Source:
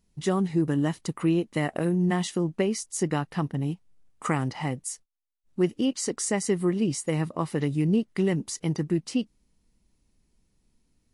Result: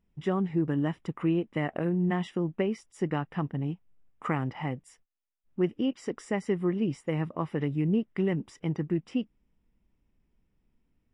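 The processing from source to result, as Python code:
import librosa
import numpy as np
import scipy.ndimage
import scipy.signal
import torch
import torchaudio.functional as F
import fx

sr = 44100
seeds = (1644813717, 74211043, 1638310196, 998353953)

y = scipy.signal.savgol_filter(x, 25, 4, mode='constant')
y = y * librosa.db_to_amplitude(-3.0)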